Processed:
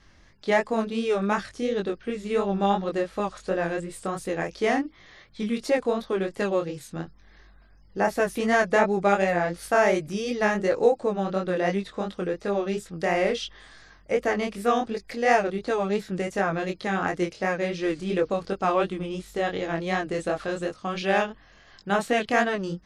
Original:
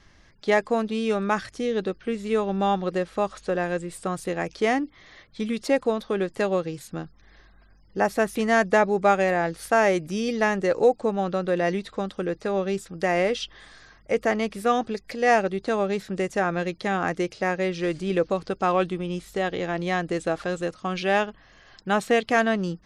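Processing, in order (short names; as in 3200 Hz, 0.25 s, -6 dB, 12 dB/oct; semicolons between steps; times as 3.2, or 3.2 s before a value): chorus 2.8 Hz, delay 20 ms, depth 5.5 ms; gain +2 dB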